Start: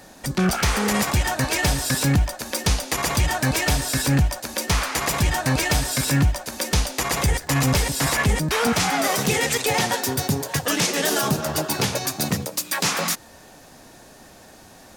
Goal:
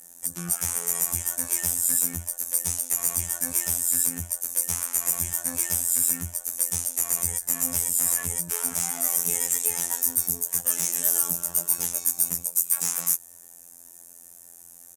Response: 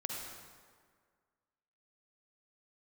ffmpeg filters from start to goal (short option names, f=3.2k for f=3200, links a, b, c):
-filter_complex "[0:a]afftfilt=real='hypot(re,im)*cos(PI*b)':imag='0':win_size=2048:overlap=0.75,aresample=32000,aresample=44100,acrossover=split=3400[a][b];[b]volume=12dB,asoftclip=hard,volume=-12dB[c];[a][c]amix=inputs=2:normalize=0,aexciter=amount=12.4:drive=7.7:freq=6.5k,volume=-13.5dB"